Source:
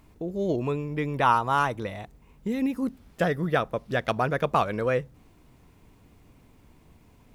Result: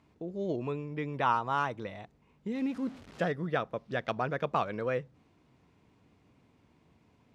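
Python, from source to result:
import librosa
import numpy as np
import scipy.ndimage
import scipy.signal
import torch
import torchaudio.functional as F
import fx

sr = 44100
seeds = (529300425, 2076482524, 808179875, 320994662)

y = fx.zero_step(x, sr, step_db=-38.0, at=(2.55, 3.32))
y = fx.bandpass_edges(y, sr, low_hz=100.0, high_hz=5600.0)
y = F.gain(torch.from_numpy(y), -6.5).numpy()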